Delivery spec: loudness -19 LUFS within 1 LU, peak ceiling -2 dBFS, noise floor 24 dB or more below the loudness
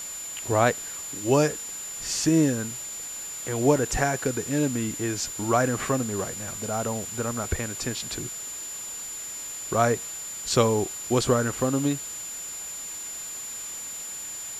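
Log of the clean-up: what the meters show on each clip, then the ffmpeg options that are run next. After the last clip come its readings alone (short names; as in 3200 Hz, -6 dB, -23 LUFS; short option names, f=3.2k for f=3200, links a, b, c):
steady tone 7100 Hz; tone level -34 dBFS; noise floor -36 dBFS; noise floor target -51 dBFS; loudness -27.0 LUFS; peak -6.5 dBFS; loudness target -19.0 LUFS
-> -af "bandreject=f=7.1k:w=30"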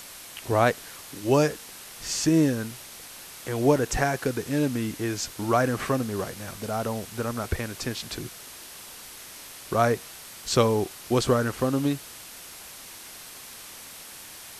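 steady tone none; noise floor -44 dBFS; noise floor target -51 dBFS
-> -af "afftdn=nr=7:nf=-44"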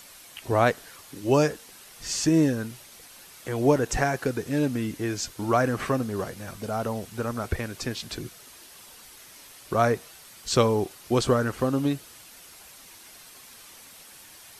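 noise floor -49 dBFS; noise floor target -51 dBFS
-> -af "afftdn=nr=6:nf=-49"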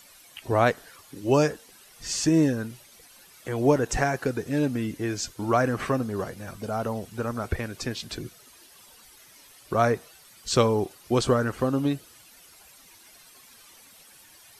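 noise floor -53 dBFS; loudness -26.0 LUFS; peak -6.5 dBFS; loudness target -19.0 LUFS
-> -af "volume=7dB,alimiter=limit=-2dB:level=0:latency=1"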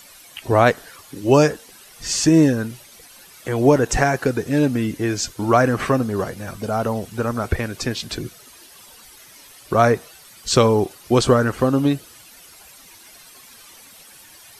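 loudness -19.5 LUFS; peak -2.0 dBFS; noise floor -46 dBFS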